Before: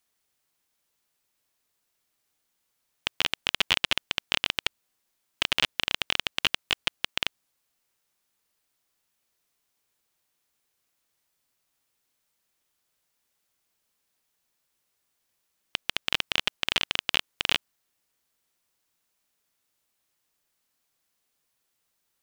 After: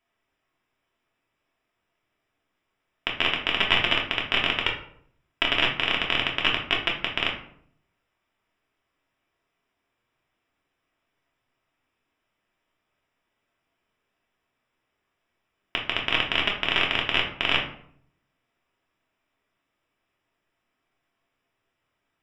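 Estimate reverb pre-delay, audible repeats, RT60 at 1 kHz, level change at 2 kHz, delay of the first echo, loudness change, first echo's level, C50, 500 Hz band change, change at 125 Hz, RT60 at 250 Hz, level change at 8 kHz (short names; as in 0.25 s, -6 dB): 3 ms, none, 0.60 s, +5.0 dB, none, +3.5 dB, none, 7.0 dB, +7.5 dB, +7.5 dB, 0.80 s, under -10 dB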